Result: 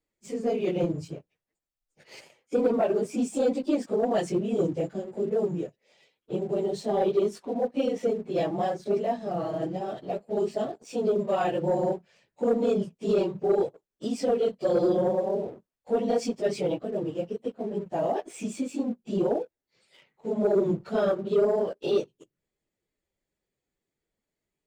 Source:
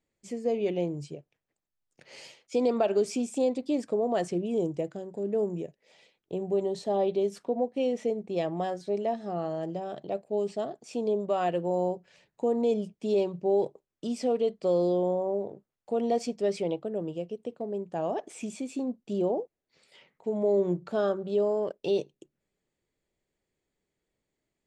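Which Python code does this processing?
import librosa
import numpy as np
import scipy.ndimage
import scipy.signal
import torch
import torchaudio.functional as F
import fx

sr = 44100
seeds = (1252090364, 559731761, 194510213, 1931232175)

y = fx.phase_scramble(x, sr, seeds[0], window_ms=50)
y = fx.peak_eq(y, sr, hz=4600.0, db=-12.5, octaves=1.6, at=(2.19, 3.17), fade=0.02)
y = fx.leveller(y, sr, passes=1)
y = F.gain(torch.from_numpy(y), -1.0).numpy()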